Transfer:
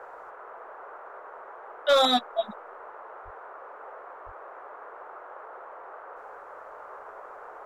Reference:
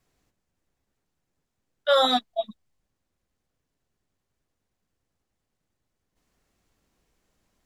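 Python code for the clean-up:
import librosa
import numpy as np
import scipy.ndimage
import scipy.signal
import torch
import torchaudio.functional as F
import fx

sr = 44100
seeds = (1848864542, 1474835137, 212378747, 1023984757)

y = fx.fix_declip(x, sr, threshold_db=-13.0)
y = fx.highpass(y, sr, hz=140.0, slope=24, at=(3.24, 3.36), fade=0.02)
y = fx.highpass(y, sr, hz=140.0, slope=24, at=(4.25, 4.37), fade=0.02)
y = fx.noise_reduce(y, sr, print_start_s=0.04, print_end_s=0.54, reduce_db=30.0)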